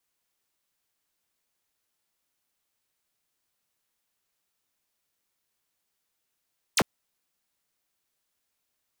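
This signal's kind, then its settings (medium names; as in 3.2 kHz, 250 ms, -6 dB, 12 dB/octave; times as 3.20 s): laser zap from 11 kHz, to 110 Hz, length 0.05 s square, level -21 dB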